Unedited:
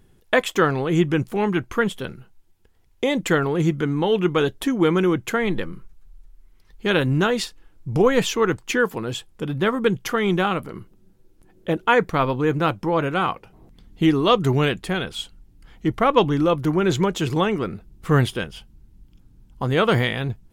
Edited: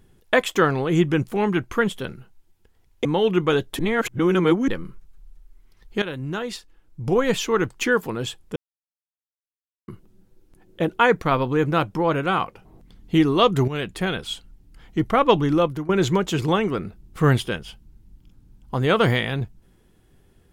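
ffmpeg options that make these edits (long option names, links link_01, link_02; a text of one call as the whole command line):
ffmpeg -i in.wav -filter_complex "[0:a]asplit=9[link_01][link_02][link_03][link_04][link_05][link_06][link_07][link_08][link_09];[link_01]atrim=end=3.052[link_10];[link_02]atrim=start=3.928:end=4.672[link_11];[link_03]atrim=start=4.668:end=5.562,asetpts=PTS-STARTPTS,areverse[link_12];[link_04]atrim=start=5.558:end=6.9,asetpts=PTS-STARTPTS,afade=type=out:start_time=1.338:duration=0.004:curve=hsin:silence=0.223872[link_13];[link_05]atrim=start=6.9:end=9.44,asetpts=PTS-STARTPTS,afade=type=in:duration=1.79:silence=0.223872,afade=type=out:start_time=2.536:duration=0.004:curve=hsin[link_14];[link_06]atrim=start=9.44:end=10.76,asetpts=PTS-STARTPTS,volume=0[link_15];[link_07]atrim=start=10.76:end=14.56,asetpts=PTS-STARTPTS,afade=type=in:duration=0.004:curve=hsin,afade=type=out:start_time=3.796:duration=0.004:curve=hsin:silence=0.199526[link_16];[link_08]atrim=start=14.56:end=16.77,asetpts=PTS-STARTPTS,afade=type=in:duration=0.31:silence=0.199526,afade=type=out:start_time=1.94:duration=0.27:silence=0.125893[link_17];[link_09]atrim=start=16.77,asetpts=PTS-STARTPTS,afade=type=in:duration=0.004:curve=hsin:silence=0.125893[link_18];[link_10][link_11]acrossfade=duration=0.004:curve1=hsin:curve2=hsin[link_19];[link_19][link_12]acrossfade=duration=0.004:curve1=hsin:curve2=hsin[link_20];[link_13][link_14][link_15][link_16][link_17][link_18]concat=n=6:v=0:a=1[link_21];[link_20][link_21]acrossfade=duration=0.004:curve1=hsin:curve2=hsin" out.wav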